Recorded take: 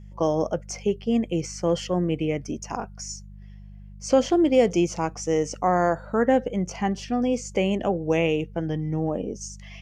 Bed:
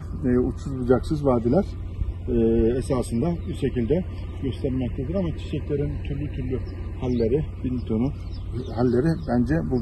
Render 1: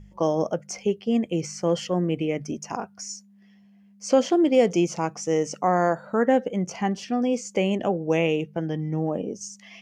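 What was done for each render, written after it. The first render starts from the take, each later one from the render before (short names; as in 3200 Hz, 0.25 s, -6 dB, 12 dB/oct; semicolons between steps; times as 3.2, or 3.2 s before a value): de-hum 50 Hz, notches 3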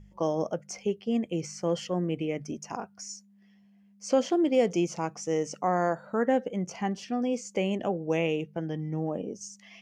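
gain -5 dB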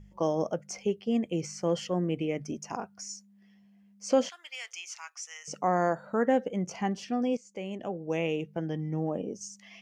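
4.29–5.48 HPF 1400 Hz 24 dB/oct; 7.37–8.62 fade in, from -15.5 dB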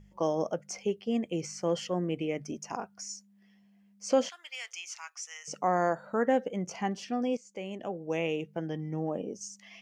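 low shelf 230 Hz -5 dB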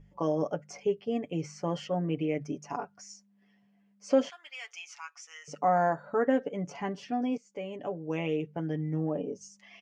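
LPF 2100 Hz 6 dB/oct; comb 7 ms, depth 69%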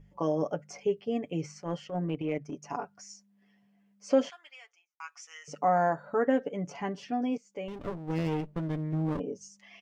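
1.46–2.63 transient shaper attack -10 dB, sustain -6 dB; 4.25–5 studio fade out; 7.68–9.2 running maximum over 33 samples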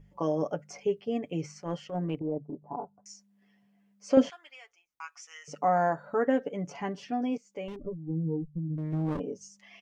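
2.19–3.06 Chebyshev low-pass 940 Hz, order 4; 4.17–5.05 low shelf 400 Hz +11.5 dB; 7.76–8.78 spectral contrast raised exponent 3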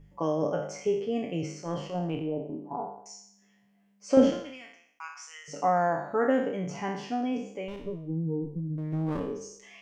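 spectral trails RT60 0.68 s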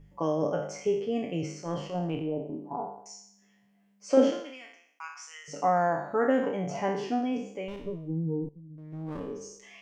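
4.1–5.45 HPF 260 Hz 24 dB/oct; 6.42–7.18 bell 1100 Hz -> 330 Hz +14 dB 0.49 oct; 8.49–9.5 fade in quadratic, from -15.5 dB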